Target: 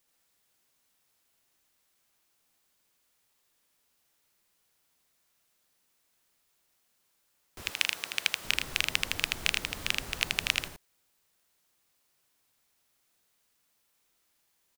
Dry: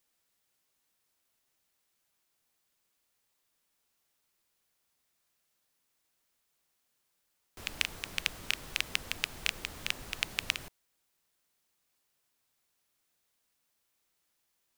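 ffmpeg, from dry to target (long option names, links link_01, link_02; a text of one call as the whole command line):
ffmpeg -i in.wav -filter_complex "[0:a]asettb=1/sr,asplit=3[link_01][link_02][link_03];[link_01]atrim=end=7.624[link_04];[link_02]atrim=start=7.62:end=8.45,asetpts=PTS-STARTPTS,afade=type=in:duration=0.004:curve=qsin,afade=type=out:start_time=0.826:duration=0.004:curve=qsin,highpass=frequency=690:poles=1[link_05];[link_03]atrim=start=8.446[link_06];[link_04][link_05]acrossfade=duration=0.004:curve1=hsin:curve2=qsin[link_07];[link_07][link_06]acrossfade=duration=0.004:curve1=qsin:curve2=hsin,asplit=2[link_08][link_09];[link_09]aecho=0:1:80:0.708[link_10];[link_08][link_10]amix=inputs=2:normalize=0,volume=3dB" out.wav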